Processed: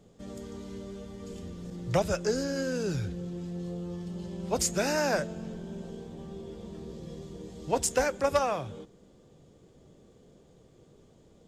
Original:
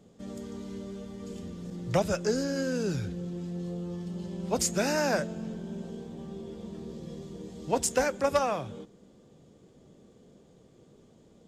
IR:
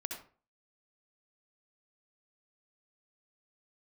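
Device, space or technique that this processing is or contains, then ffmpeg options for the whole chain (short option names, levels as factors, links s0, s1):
low shelf boost with a cut just above: -af "lowshelf=f=73:g=7,equalizer=f=220:t=o:w=0.66:g=-4.5"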